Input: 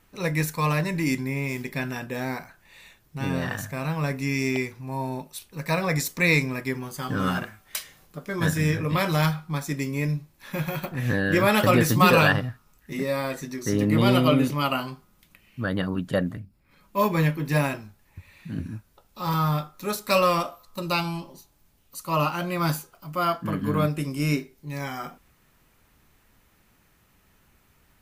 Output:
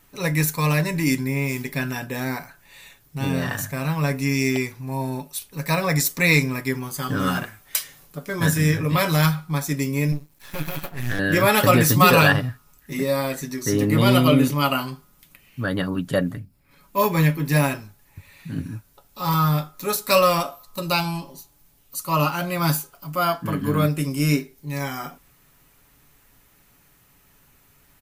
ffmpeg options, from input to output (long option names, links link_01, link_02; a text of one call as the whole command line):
ffmpeg -i in.wav -filter_complex "[0:a]asettb=1/sr,asplit=3[link_01][link_02][link_03];[link_01]atrim=end=10.124[link_04];[link_02]atrim=start=10.12:end=11.19,asetpts=PTS-STARTPTS,afade=type=in:duration=0.004:curve=qsin,afade=type=out:start_time=1.066:duration=0.004:curve=qsin,aeval=exprs='max(val(0),0)':channel_layout=same[link_05];[link_03]atrim=start=11.186[link_06];[link_04][link_05]acrossfade=duration=0.004:curve1=hsin:curve2=qsin[link_07];[link_07][link_06]acrossfade=duration=0.004:curve1=qsin:curve2=hsin,highshelf=frequency=6500:gain=8,aecho=1:1:7.1:0.36,volume=2dB" out.wav